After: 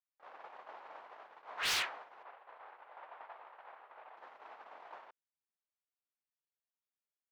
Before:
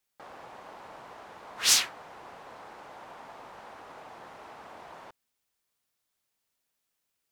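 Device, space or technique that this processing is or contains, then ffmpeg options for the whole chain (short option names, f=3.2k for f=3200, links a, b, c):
walkie-talkie: -filter_complex "[0:a]asettb=1/sr,asplit=3[a][b][c];[a]atrim=end=2.234[d];[b]atrim=start=2.23:end=4.17,asetpts=PTS-STARTPTS,afade=t=in:d=0.004:c=qsin,afade=t=out:st=1.936:d=0.004:c=qsin,acrossover=split=360 3900:gain=0.2 1 0.0794[e][f][g];[e][f][g]amix=inputs=3:normalize=0[h];[c]atrim=start=4.166[i];[d][h]acrossfade=d=0.004:c1=hsin:c2=qsin[j];[j][i]acrossfade=d=0.004:c1=qsin:c2=hsin,highpass=550,lowpass=2.8k,asoftclip=type=hard:threshold=-31dB,agate=range=-19dB:threshold=-47dB:ratio=16:detection=peak,volume=1dB"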